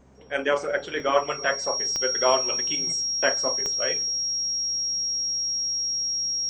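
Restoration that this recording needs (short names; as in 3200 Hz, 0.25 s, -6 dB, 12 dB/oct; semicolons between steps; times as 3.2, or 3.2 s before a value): de-click; de-hum 66 Hz, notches 4; notch 5600 Hz, Q 30; interpolate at 1, 1.2 ms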